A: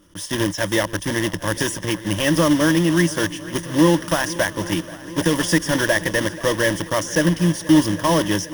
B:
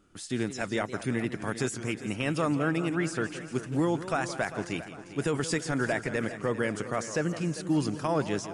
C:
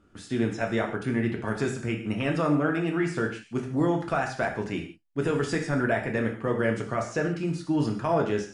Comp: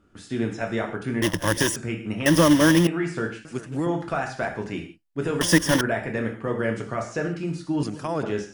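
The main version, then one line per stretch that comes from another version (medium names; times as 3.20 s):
C
1.22–1.76 s: from A
2.26–2.87 s: from A
3.45–3.86 s: from B
5.41–5.81 s: from A
7.83–8.23 s: from B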